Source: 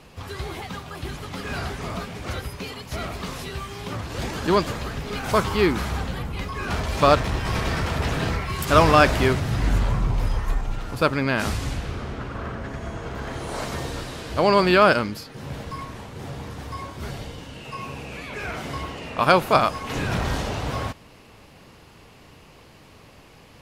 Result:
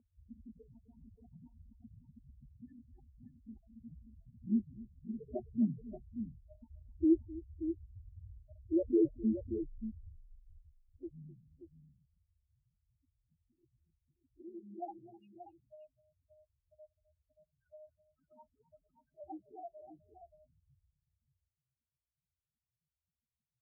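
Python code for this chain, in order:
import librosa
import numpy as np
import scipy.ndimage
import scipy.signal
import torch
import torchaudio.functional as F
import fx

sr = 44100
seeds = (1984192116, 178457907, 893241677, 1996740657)

p1 = fx.notch_comb(x, sr, f0_hz=170.0)
p2 = fx.spec_topn(p1, sr, count=1)
p3 = fx.pitch_keep_formants(p2, sr, semitones=-10.0)
p4 = fx.filter_sweep_bandpass(p3, sr, from_hz=340.0, to_hz=3200.0, start_s=9.54, end_s=12.25, q=0.91)
y = p4 + fx.echo_multitap(p4, sr, ms=(258, 580), db=(-19.0, -10.0), dry=0)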